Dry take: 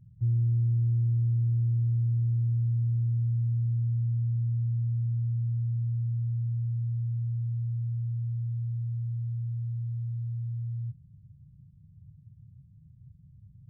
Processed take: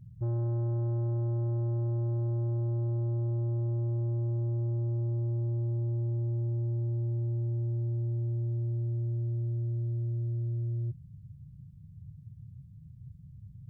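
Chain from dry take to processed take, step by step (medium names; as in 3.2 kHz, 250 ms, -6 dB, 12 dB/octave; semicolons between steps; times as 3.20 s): saturation -33 dBFS, distortion -10 dB; trim +4.5 dB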